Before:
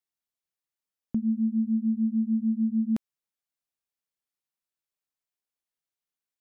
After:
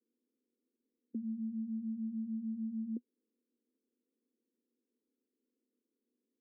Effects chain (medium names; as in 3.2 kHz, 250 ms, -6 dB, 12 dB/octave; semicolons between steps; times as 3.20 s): spectral levelling over time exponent 0.6; elliptic band-pass 240–490 Hz, stop band 40 dB; trim -6.5 dB